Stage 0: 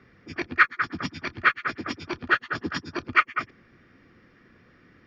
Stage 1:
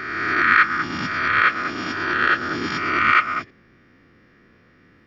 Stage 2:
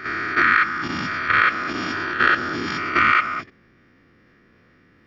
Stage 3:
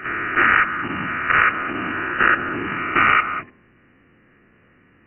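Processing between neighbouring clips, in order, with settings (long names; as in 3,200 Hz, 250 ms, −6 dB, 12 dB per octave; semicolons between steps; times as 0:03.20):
peak hold with a rise ahead of every peak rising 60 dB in 1.76 s; level −1 dB
output level in coarse steps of 10 dB; level +4 dB
one scale factor per block 3 bits; linear-phase brick-wall low-pass 3,000 Hz; hum removal 81.07 Hz, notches 13; level +1 dB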